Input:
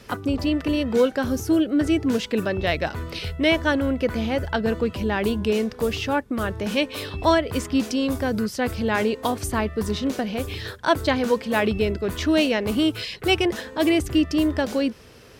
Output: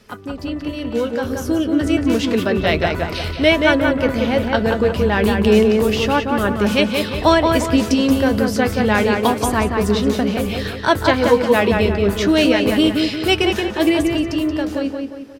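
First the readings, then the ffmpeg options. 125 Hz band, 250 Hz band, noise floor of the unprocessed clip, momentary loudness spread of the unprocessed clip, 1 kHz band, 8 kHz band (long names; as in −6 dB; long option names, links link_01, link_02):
+6.5 dB, +5.5 dB, −45 dBFS, 6 LU, +7.0 dB, +5.0 dB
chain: -filter_complex "[0:a]flanger=delay=4.7:depth=6.3:regen=62:speed=0.3:shape=sinusoidal,dynaudnorm=framelen=180:gausssize=17:maxgain=11.5dB,asplit=2[link_01][link_02];[link_02]adelay=178,lowpass=frequency=3000:poles=1,volume=-3.5dB,asplit=2[link_03][link_04];[link_04]adelay=178,lowpass=frequency=3000:poles=1,volume=0.45,asplit=2[link_05][link_06];[link_06]adelay=178,lowpass=frequency=3000:poles=1,volume=0.45,asplit=2[link_07][link_08];[link_08]adelay=178,lowpass=frequency=3000:poles=1,volume=0.45,asplit=2[link_09][link_10];[link_10]adelay=178,lowpass=frequency=3000:poles=1,volume=0.45,asplit=2[link_11][link_12];[link_12]adelay=178,lowpass=frequency=3000:poles=1,volume=0.45[link_13];[link_01][link_03][link_05][link_07][link_09][link_11][link_13]amix=inputs=7:normalize=0"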